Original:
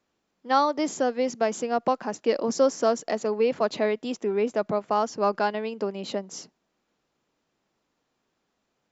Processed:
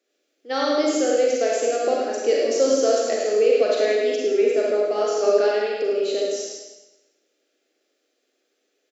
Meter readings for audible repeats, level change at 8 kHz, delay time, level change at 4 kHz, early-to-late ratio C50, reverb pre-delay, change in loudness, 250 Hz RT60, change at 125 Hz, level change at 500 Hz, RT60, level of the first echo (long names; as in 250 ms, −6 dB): 1, can't be measured, 105 ms, +6.5 dB, −2.5 dB, 34 ms, +5.0 dB, 1.0 s, below −10 dB, +7.0 dB, 1.0 s, −5.0 dB